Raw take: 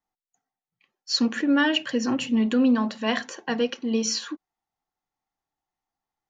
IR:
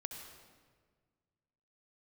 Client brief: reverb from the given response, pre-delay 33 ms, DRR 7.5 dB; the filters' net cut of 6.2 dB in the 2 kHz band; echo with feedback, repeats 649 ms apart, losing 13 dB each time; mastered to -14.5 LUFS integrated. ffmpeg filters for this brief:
-filter_complex "[0:a]equalizer=f=2000:t=o:g=-8,aecho=1:1:649|1298|1947:0.224|0.0493|0.0108,asplit=2[s0][s1];[1:a]atrim=start_sample=2205,adelay=33[s2];[s1][s2]afir=irnorm=-1:irlink=0,volume=0.531[s3];[s0][s3]amix=inputs=2:normalize=0,volume=3.16"

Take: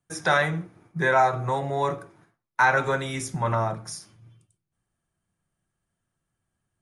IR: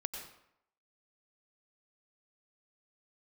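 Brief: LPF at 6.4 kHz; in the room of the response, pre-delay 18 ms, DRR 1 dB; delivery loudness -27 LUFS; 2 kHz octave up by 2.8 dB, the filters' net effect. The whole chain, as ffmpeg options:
-filter_complex "[0:a]lowpass=6400,equalizer=f=2000:t=o:g=4,asplit=2[s0][s1];[1:a]atrim=start_sample=2205,adelay=18[s2];[s1][s2]afir=irnorm=-1:irlink=0,volume=0.841[s3];[s0][s3]amix=inputs=2:normalize=0,volume=0.473"

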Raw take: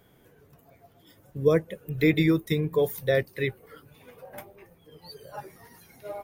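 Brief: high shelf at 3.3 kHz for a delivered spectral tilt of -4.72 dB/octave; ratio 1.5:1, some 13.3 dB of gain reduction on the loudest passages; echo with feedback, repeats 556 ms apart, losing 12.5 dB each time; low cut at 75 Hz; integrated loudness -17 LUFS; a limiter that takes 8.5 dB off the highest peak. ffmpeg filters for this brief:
-af "highpass=75,highshelf=f=3300:g=6,acompressor=threshold=0.002:ratio=1.5,alimiter=level_in=2.11:limit=0.0631:level=0:latency=1,volume=0.473,aecho=1:1:556|1112|1668:0.237|0.0569|0.0137,volume=21.1"

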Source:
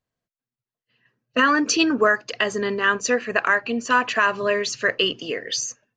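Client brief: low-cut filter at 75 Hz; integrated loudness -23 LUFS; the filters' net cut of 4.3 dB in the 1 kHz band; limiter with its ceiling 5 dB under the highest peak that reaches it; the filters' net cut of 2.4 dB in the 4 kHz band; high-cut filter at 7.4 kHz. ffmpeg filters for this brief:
-af "highpass=75,lowpass=7400,equalizer=f=1000:t=o:g=-5,equalizer=f=4000:t=o:g=-3,volume=1.26,alimiter=limit=0.266:level=0:latency=1"

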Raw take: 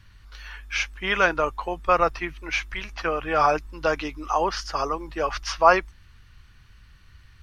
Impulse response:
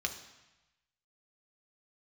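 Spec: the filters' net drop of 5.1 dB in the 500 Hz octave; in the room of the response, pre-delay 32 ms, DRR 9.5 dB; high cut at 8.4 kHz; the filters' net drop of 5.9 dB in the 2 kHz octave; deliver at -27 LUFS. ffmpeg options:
-filter_complex "[0:a]lowpass=8400,equalizer=f=500:t=o:g=-6,equalizer=f=2000:t=o:g=-8,asplit=2[s0][s1];[1:a]atrim=start_sample=2205,adelay=32[s2];[s1][s2]afir=irnorm=-1:irlink=0,volume=0.224[s3];[s0][s3]amix=inputs=2:normalize=0,volume=1.12"

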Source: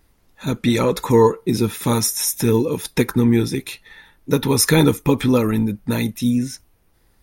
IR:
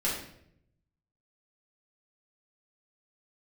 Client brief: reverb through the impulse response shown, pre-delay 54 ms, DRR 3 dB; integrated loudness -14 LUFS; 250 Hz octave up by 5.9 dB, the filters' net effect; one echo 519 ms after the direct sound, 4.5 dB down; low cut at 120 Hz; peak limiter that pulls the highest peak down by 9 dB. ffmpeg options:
-filter_complex "[0:a]highpass=120,equalizer=f=250:t=o:g=7,alimiter=limit=0.447:level=0:latency=1,aecho=1:1:519:0.596,asplit=2[s0][s1];[1:a]atrim=start_sample=2205,adelay=54[s2];[s1][s2]afir=irnorm=-1:irlink=0,volume=0.282[s3];[s0][s3]amix=inputs=2:normalize=0,volume=1.06"

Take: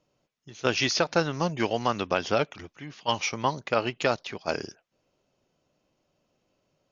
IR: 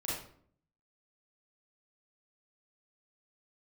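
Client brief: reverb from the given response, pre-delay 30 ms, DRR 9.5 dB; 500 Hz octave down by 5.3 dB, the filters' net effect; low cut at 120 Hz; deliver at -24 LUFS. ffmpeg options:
-filter_complex "[0:a]highpass=120,equalizer=f=500:t=o:g=-6.5,asplit=2[s0][s1];[1:a]atrim=start_sample=2205,adelay=30[s2];[s1][s2]afir=irnorm=-1:irlink=0,volume=0.224[s3];[s0][s3]amix=inputs=2:normalize=0,volume=1.78"

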